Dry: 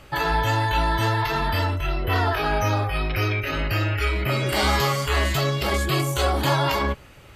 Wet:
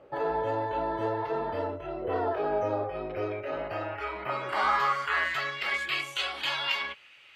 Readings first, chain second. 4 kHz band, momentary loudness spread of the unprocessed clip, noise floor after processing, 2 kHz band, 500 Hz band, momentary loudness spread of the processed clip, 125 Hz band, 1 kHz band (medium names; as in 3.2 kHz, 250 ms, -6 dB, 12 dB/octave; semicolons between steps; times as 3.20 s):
-7.0 dB, 4 LU, -54 dBFS, -5.5 dB, -4.0 dB, 8 LU, -21.0 dB, -6.0 dB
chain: band-pass sweep 500 Hz -> 2.7 kHz, 3.11–6.18 s; trim +2.5 dB